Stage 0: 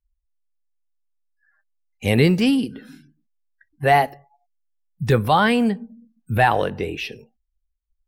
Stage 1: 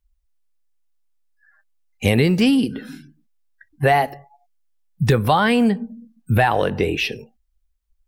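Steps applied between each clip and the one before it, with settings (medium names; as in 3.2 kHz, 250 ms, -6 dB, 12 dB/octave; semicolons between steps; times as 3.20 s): compression 5:1, threshold -20 dBFS, peak gain reduction 9 dB; trim +7 dB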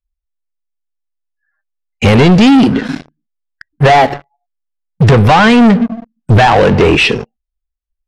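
waveshaping leveller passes 5; distance through air 100 m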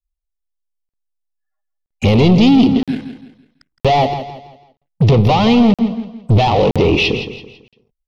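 touch-sensitive phaser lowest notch 270 Hz, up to 1.6 kHz, full sweep at -11 dBFS; on a send: feedback delay 166 ms, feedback 36%, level -11 dB; on the sum: crackling interface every 0.97 s, samples 2048, zero, from 0.89 s; trim -3.5 dB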